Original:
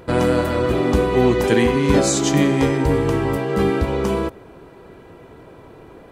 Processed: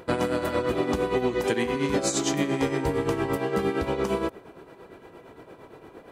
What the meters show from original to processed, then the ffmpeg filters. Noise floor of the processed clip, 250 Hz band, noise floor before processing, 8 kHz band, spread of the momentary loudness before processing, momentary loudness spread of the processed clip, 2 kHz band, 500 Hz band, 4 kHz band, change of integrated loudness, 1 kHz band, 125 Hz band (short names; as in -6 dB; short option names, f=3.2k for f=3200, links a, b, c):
-51 dBFS, -9.0 dB, -44 dBFS, -6.5 dB, 5 LU, 2 LU, -6.5 dB, -7.5 dB, -6.0 dB, -8.0 dB, -6.0 dB, -12.0 dB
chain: -af "lowshelf=f=140:g=-10.5,acompressor=threshold=-19dB:ratio=6,tremolo=f=8.7:d=0.6"